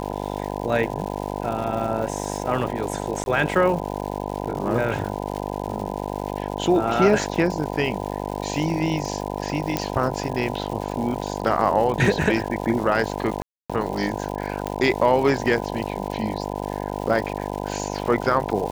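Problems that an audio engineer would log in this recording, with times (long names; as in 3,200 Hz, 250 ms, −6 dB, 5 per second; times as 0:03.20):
mains buzz 50 Hz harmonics 20 −29 dBFS
surface crackle 300 per second −31 dBFS
0:03.24–0:03.26: drop-out 21 ms
0:09.77: click −7 dBFS
0:13.42–0:13.70: drop-out 276 ms
0:14.67: click −13 dBFS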